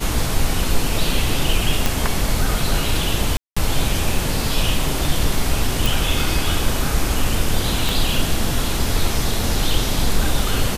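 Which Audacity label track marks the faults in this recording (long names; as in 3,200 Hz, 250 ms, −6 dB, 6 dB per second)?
1.860000	1.860000	click
3.370000	3.560000	drop-out 195 ms
5.860000	5.860000	click
7.890000	7.890000	click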